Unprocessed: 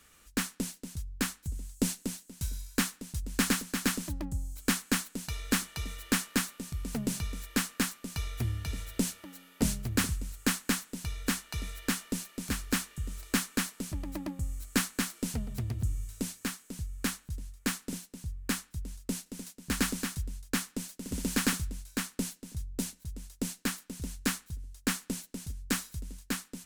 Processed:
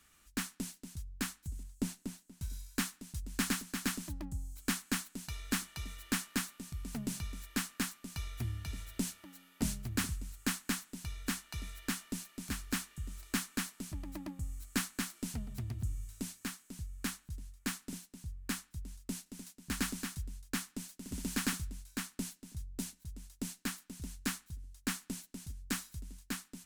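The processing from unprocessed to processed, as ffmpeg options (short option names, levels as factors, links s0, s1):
-filter_complex "[0:a]asettb=1/sr,asplit=3[s0][s1][s2];[s0]atrim=end=1.634[s3];[s1]atrim=start=1.63:end=2.5,asetpts=PTS-STARTPTS,afade=t=in:d=0.004:c=qsin,afade=t=out:st=0.866:d=0.004:c=qsin,highshelf=f=2100:g=-6.5[s4];[s2]atrim=start=2.496[s5];[s3][s4]acrossfade=d=0.004:c1=hsin:c2=qsin[s6];[s6][s5]acrossfade=d=0.004:c1=qsin:c2=hsin,equalizer=f=490:t=o:w=0.36:g=-9.5,volume=0.531"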